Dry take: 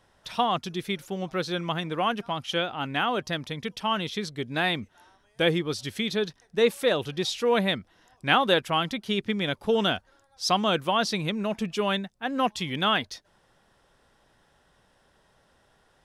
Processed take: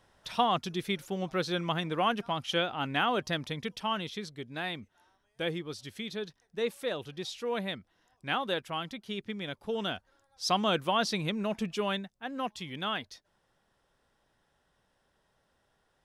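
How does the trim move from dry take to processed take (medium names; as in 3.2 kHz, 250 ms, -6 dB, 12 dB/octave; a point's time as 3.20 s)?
3.50 s -2 dB
4.53 s -10 dB
9.73 s -10 dB
10.61 s -3.5 dB
11.64 s -3.5 dB
12.43 s -9.5 dB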